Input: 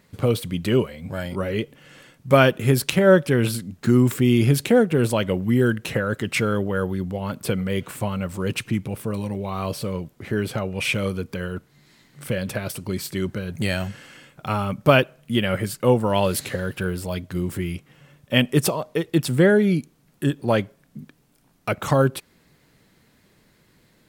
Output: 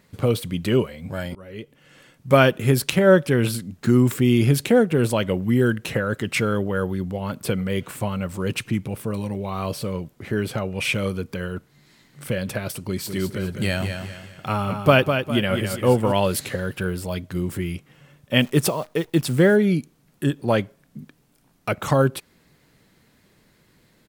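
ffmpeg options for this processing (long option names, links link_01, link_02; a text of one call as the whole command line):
ffmpeg -i in.wav -filter_complex "[0:a]asplit=3[link_01][link_02][link_03];[link_01]afade=type=out:start_time=13.06:duration=0.02[link_04];[link_02]aecho=1:1:203|406|609|812:0.447|0.161|0.0579|0.0208,afade=type=in:start_time=13.06:duration=0.02,afade=type=out:start_time=16.11:duration=0.02[link_05];[link_03]afade=type=in:start_time=16.11:duration=0.02[link_06];[link_04][link_05][link_06]amix=inputs=3:normalize=0,asettb=1/sr,asplit=3[link_07][link_08][link_09];[link_07]atrim=end=18.404[link_10];[link_08]atrim=start=18.4:end=19.56,asetpts=PTS-STARTPTS,afade=type=in:duration=0.004:curve=qsin,afade=type=out:start_time=1.156:duration=0.004:curve=qsin,acrusher=bits=8:dc=4:mix=0:aa=0.000001[link_11];[link_09]atrim=start=19.556[link_12];[link_10][link_11]acrossfade=duration=0.004:curve1=hsin:curve2=qsin[link_13];[link_13][link_12]acrossfade=duration=0.004:curve1=qsin:curve2=hsin,asplit=2[link_14][link_15];[link_14]atrim=end=1.35,asetpts=PTS-STARTPTS,afade=type=out:start_time=1.346:duration=0.004:curve=hsin:silence=0.0794328[link_16];[link_15]atrim=start=1.35,asetpts=PTS-STARTPTS,afade=type=in:duration=0.98:silence=0.0794328[link_17];[link_16][link_17]concat=n=2:v=0:a=1" out.wav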